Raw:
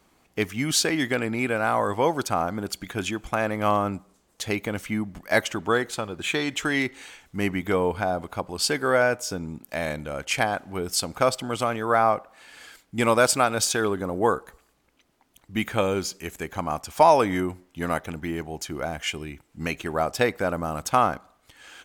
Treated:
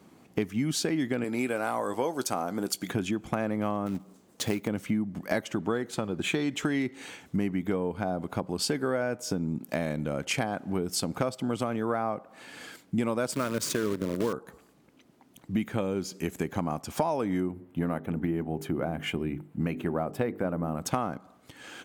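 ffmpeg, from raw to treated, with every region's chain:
-filter_complex "[0:a]asettb=1/sr,asplit=3[a][b][c];[a]atrim=end=1.244[d];[b]atrim=start=1.24:end=2.88,asetpts=PTS-STARTPTS,afade=t=in:d=0.004:c=qsin,afade=t=out:st=1.636:d=0.004:c=qsin,bass=f=250:g=-11,treble=f=4k:g=9,asplit=2[e][f];[f]adelay=16,volume=-13dB[g];[e][g]amix=inputs=2:normalize=0,atrim=end_sample=72324[h];[c]atrim=start=2.876[i];[d][h]acrossfade=d=0.004:c1=hsin:c2=qsin[j];[j][i]acrossfade=d=0.004:c1=qsin:c2=hsin,asettb=1/sr,asplit=3[k][l][m];[k]atrim=end=3.864[n];[l]atrim=start=3.86:end=4.68,asetpts=PTS-STARTPTS,afade=t=in:d=0.004:c=qsin,afade=t=out:st=0.816:d=0.004:c=qsin,lowshelf=f=190:g=-3,acrusher=bits=2:mode=log:mix=0:aa=0.000001[o];[m]atrim=start=4.676[p];[n][o]acrossfade=d=0.004:c1=hsin:c2=qsin[q];[q][p]acrossfade=d=0.004:c1=qsin:c2=hsin,asettb=1/sr,asplit=3[r][s][t];[r]atrim=end=13.324[u];[s]atrim=start=13.32:end=14.33,asetpts=PTS-STARTPTS,afade=t=in:d=0.004:c=qsin,afade=t=out:st=1.006:d=0.004:c=qsin,acrusher=bits=5:dc=4:mix=0:aa=0.000001,asuperstop=centerf=770:order=4:qfactor=3.2[v];[t]atrim=start=14.326[w];[u][v]acrossfade=d=0.004:c1=hsin:c2=qsin[x];[x][w]acrossfade=d=0.004:c1=qsin:c2=hsin,asettb=1/sr,asplit=3[y][z][aa];[y]atrim=end=17.484[ab];[z]atrim=start=17.48:end=20.82,asetpts=PTS-STARTPTS,afade=t=in:d=0.004:c=qsin,afade=t=out:st=3.336:d=0.004:c=qsin,equalizer=f=5.8k:t=o:w=1.4:g=-15,bandreject=f=50:t=h:w=6,bandreject=f=100:t=h:w=6,bandreject=f=150:t=h:w=6,bandreject=f=200:t=h:w=6,bandreject=f=250:t=h:w=6,bandreject=f=300:t=h:w=6,bandreject=f=350:t=h:w=6,bandreject=f=400:t=h:w=6,bandreject=f=450:t=h:w=6[ac];[aa]atrim=start=20.816[ad];[ab][ac]acrossfade=d=0.004:c1=hsin:c2=qsin[ae];[ae][ad]acrossfade=d=0.004:c1=qsin:c2=hsin,highpass=90,equalizer=f=200:t=o:w=2.7:g=12,acompressor=threshold=-26dB:ratio=6"

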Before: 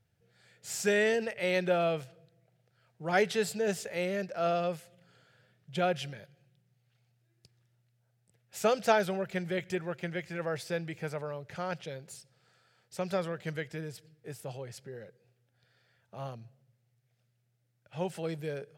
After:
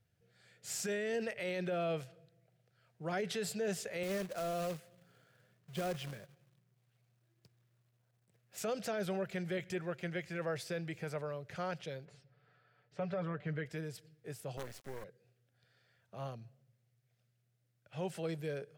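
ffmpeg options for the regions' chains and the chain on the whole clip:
-filter_complex "[0:a]asettb=1/sr,asplit=3[a][b][c];[a]atrim=end=4.034[d];[b]atrim=start=4.03:end=8.58,asetpts=PTS-STARTPTS,afade=t=in:d=0.004:c=qsin,afade=t=out:st=4.546:d=0.004:c=qsin,highpass=f=91:w=0.5412,highpass=f=91:w=1.3066,highshelf=f=2.7k:g=-8.5,acrusher=bits=2:mode=log:mix=0:aa=0.000001[e];[c]atrim=start=8.576[f];[d][e]acrossfade=d=0.004:c1=hsin:c2=qsin[g];[g][f]acrossfade=d=0.004:c1=qsin:c2=hsin,asettb=1/sr,asplit=3[h][i][j];[h]atrim=end=12.054[k];[i]atrim=start=12.05:end=13.66,asetpts=PTS-STARTPTS,afade=t=in:d=0.004:c=qsin,afade=t=out:st=1.606:d=0.004:c=qsin,lowpass=2.2k,aecho=1:1:6.9:0.66,atrim=end_sample=71001[l];[j]atrim=start=13.656[m];[k][l]acrossfade=d=0.004:c1=hsin:c2=qsin[n];[n][m]acrossfade=d=0.004:c1=qsin:c2=hsin,asettb=1/sr,asplit=3[o][p][q];[o]atrim=end=14.574[r];[p]atrim=start=14.57:end=15.04,asetpts=PTS-STARTPTS,afade=t=in:d=0.004:c=qsin,afade=t=out:st=0.466:d=0.004:c=qsin,highpass=f=69:w=0.5412,highpass=f=69:w=1.3066,equalizer=f=830:w=0.51:g=8,acrusher=bits=6:dc=4:mix=0:aa=0.000001[s];[q]atrim=start=15.036[t];[r][s]acrossfade=d=0.004:c1=hsin:c2=qsin[u];[u][t]acrossfade=d=0.004:c1=qsin:c2=hsin,bandreject=f=860:w=12,acrossover=split=470[v][w];[w]acompressor=threshold=-30dB:ratio=6[x];[v][x]amix=inputs=2:normalize=0,alimiter=level_in=2.5dB:limit=-24dB:level=0:latency=1:release=23,volume=-2.5dB,volume=-2.5dB"

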